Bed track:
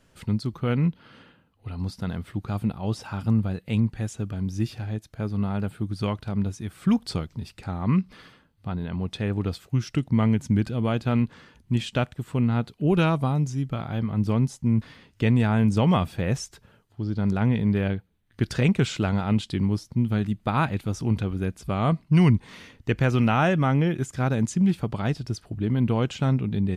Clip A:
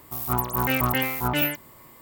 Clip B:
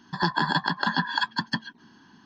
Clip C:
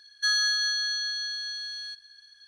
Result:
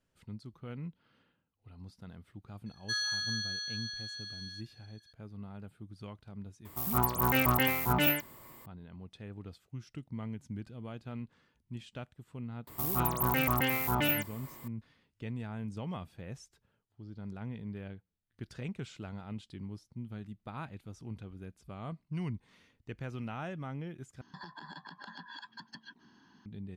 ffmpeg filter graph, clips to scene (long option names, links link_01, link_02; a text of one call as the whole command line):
ffmpeg -i bed.wav -i cue0.wav -i cue1.wav -i cue2.wav -filter_complex "[1:a]asplit=2[link_01][link_02];[0:a]volume=-19dB[link_03];[link_02]alimiter=limit=-18.5dB:level=0:latency=1:release=132[link_04];[2:a]acompressor=threshold=-33dB:ratio=10:attack=1.1:release=204:knee=1:detection=peak[link_05];[link_03]asplit=2[link_06][link_07];[link_06]atrim=end=24.214[link_08];[link_05]atrim=end=2.25,asetpts=PTS-STARTPTS,volume=-8dB[link_09];[link_07]atrim=start=26.456[link_10];[3:a]atrim=end=2.47,asetpts=PTS-STARTPTS,volume=-9dB,afade=type=in:duration=0.004:curve=hsin,afade=type=out:start_time=2.466:duration=0.004:curve=hsin,adelay=2660[link_11];[link_01]atrim=end=2.01,asetpts=PTS-STARTPTS,volume=-3.5dB,afade=type=in:duration=0.004:curve=hsin,afade=type=out:start_time=2.006:duration=0.004:curve=hsin,adelay=6650[link_12];[link_04]atrim=end=2.01,asetpts=PTS-STARTPTS,volume=-1dB,afade=type=in:duration=0.004:curve=hsin,afade=type=out:start_time=2.006:duration=0.004:curve=hsin,adelay=12670[link_13];[link_08][link_09]acrossfade=duration=0.004:curve1=hsin:curve2=hsin[link_14];[link_14][link_10]acrossfade=duration=0.004:curve1=hsin:curve2=hsin[link_15];[link_15][link_11][link_12][link_13]amix=inputs=4:normalize=0" out.wav